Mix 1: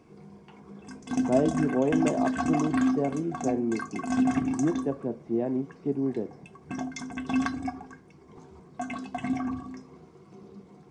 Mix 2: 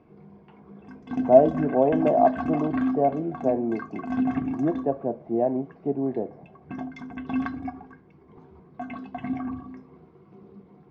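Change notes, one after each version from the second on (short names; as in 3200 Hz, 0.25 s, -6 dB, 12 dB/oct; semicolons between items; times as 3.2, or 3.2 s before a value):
speech: add bell 690 Hz +14 dB 0.81 oct; master: add air absorption 350 m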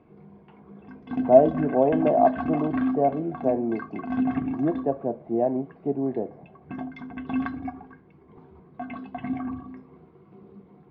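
master: add LPF 4300 Hz 24 dB/oct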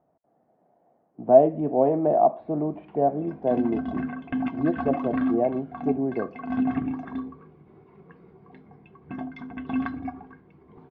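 background: entry +2.40 s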